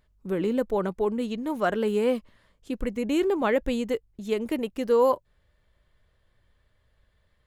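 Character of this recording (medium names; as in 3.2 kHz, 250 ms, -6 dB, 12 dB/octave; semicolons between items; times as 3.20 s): noise floor -69 dBFS; spectral tilt -3.0 dB/octave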